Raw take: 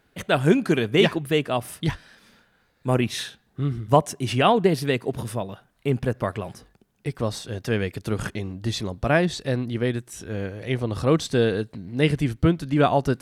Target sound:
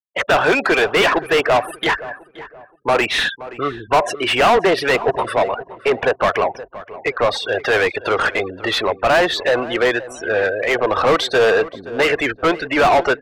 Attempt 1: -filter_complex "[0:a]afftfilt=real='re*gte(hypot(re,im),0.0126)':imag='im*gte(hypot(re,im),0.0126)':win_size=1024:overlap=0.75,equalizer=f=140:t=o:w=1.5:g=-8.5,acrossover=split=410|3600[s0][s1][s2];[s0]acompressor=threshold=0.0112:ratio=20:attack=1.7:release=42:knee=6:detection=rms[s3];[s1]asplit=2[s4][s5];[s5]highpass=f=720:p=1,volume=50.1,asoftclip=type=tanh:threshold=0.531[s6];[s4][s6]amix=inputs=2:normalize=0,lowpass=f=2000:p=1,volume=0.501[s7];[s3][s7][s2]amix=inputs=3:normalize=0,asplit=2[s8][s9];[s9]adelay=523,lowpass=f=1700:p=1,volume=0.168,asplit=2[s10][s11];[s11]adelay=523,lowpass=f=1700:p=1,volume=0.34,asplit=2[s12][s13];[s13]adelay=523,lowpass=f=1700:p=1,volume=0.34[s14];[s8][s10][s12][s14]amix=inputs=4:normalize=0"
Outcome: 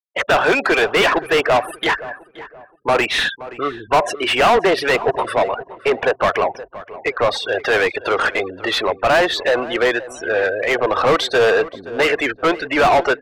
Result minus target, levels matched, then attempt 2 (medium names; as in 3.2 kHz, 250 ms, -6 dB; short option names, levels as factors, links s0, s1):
compression: peak gain reduction +9 dB
-filter_complex "[0:a]afftfilt=real='re*gte(hypot(re,im),0.0126)':imag='im*gte(hypot(re,im),0.0126)':win_size=1024:overlap=0.75,equalizer=f=140:t=o:w=1.5:g=-8.5,acrossover=split=410|3600[s0][s1][s2];[s0]acompressor=threshold=0.0335:ratio=20:attack=1.7:release=42:knee=6:detection=rms[s3];[s1]asplit=2[s4][s5];[s5]highpass=f=720:p=1,volume=50.1,asoftclip=type=tanh:threshold=0.531[s6];[s4][s6]amix=inputs=2:normalize=0,lowpass=f=2000:p=1,volume=0.501[s7];[s3][s7][s2]amix=inputs=3:normalize=0,asplit=2[s8][s9];[s9]adelay=523,lowpass=f=1700:p=1,volume=0.168,asplit=2[s10][s11];[s11]adelay=523,lowpass=f=1700:p=1,volume=0.34,asplit=2[s12][s13];[s13]adelay=523,lowpass=f=1700:p=1,volume=0.34[s14];[s8][s10][s12][s14]amix=inputs=4:normalize=0"